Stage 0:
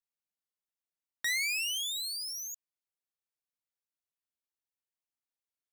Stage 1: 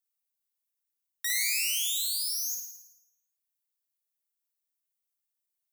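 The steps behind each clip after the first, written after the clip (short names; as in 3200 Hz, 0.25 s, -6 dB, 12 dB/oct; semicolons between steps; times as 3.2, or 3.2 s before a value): RIAA curve recording; reverb removal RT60 0.7 s; on a send: flutter echo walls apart 9.4 m, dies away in 0.86 s; on the sum: gain -6.5 dB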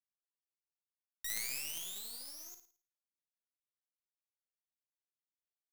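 power-law curve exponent 2; gain -2 dB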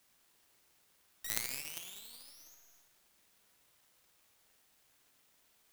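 zero-crossing step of -37 dBFS; spring tank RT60 1.3 s, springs 50 ms, chirp 25 ms, DRR -0.5 dB; power-law curve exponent 2; gain +8 dB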